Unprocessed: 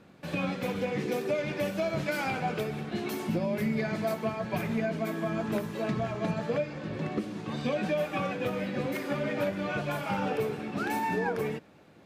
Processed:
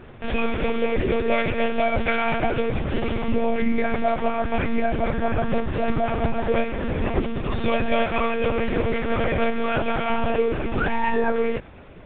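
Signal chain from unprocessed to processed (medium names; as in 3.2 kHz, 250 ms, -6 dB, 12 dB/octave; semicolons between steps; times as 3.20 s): in parallel at +2 dB: peak limiter -30 dBFS, peak gain reduction 9.5 dB; on the sum: monotone LPC vocoder at 8 kHz 230 Hz; trim +5.5 dB; A-law 64 kbps 8 kHz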